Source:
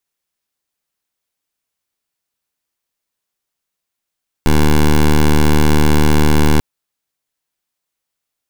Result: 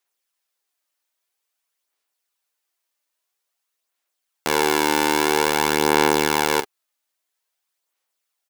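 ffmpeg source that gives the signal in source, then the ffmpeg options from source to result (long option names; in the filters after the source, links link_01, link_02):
-f lavfi -i "aevalsrc='0.335*(2*lt(mod(75.5*t,1),0.12)-1)':duration=2.14:sample_rate=44100"
-filter_complex "[0:a]highpass=460,asplit=2[link_01][link_02];[link_02]adelay=42,volume=-11.5dB[link_03];[link_01][link_03]amix=inputs=2:normalize=0,aphaser=in_gain=1:out_gain=1:delay=3.4:decay=0.35:speed=0.5:type=sinusoidal"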